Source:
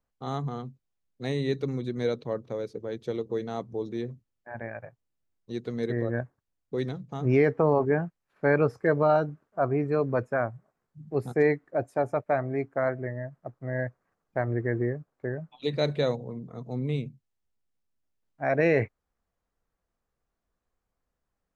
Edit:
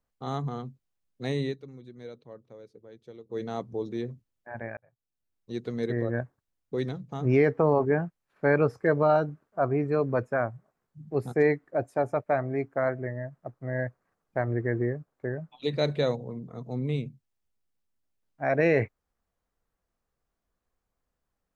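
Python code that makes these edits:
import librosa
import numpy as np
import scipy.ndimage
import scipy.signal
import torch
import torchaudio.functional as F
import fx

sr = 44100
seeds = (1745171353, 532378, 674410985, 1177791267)

y = fx.edit(x, sr, fx.fade_down_up(start_s=1.44, length_s=1.97, db=-15.0, fade_s=0.12),
    fx.fade_in_span(start_s=4.77, length_s=0.8), tone=tone)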